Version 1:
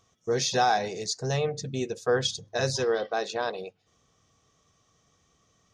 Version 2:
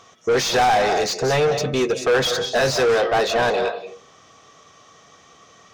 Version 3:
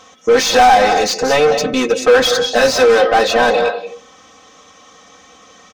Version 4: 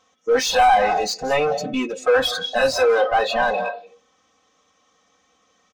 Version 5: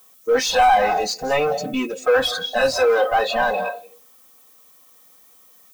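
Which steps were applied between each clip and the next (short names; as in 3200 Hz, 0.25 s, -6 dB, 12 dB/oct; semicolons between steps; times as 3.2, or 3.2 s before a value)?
on a send at -13 dB: reverb RT60 0.40 s, pre-delay 0.146 s; on the sum: overdrive pedal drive 27 dB, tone 2300 Hz, clips at -12 dBFS; gain +2 dB
comb 3.9 ms, depth 86%; gain +4 dB
spectral noise reduction 13 dB; gain -5.5 dB
added noise violet -52 dBFS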